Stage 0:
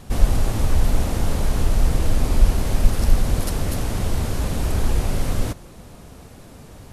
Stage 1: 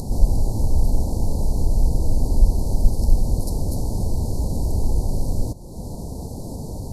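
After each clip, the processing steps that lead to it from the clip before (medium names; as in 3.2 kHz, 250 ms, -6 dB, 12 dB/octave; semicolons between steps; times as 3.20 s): Chebyshev band-stop 930–4300 Hz, order 4; bass shelf 350 Hz +5.5 dB; upward compressor, threshold -13 dBFS; trim -4.5 dB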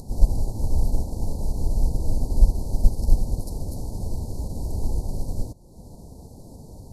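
upward expansion 1.5:1, over -31 dBFS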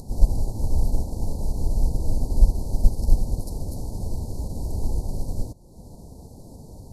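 no audible change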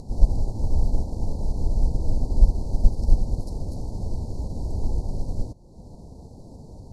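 distance through air 73 m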